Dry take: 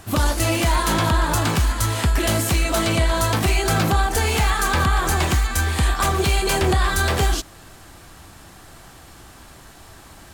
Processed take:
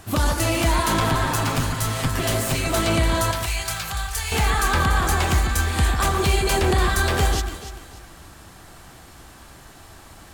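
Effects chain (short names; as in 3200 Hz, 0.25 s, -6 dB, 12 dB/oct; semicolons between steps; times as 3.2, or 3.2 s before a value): 1–2.67 minimum comb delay 7.6 ms; 3.31–4.32 passive tone stack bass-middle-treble 10-0-10; echo with dull and thin repeats by turns 0.145 s, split 2200 Hz, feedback 55%, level -6 dB; gain -1.5 dB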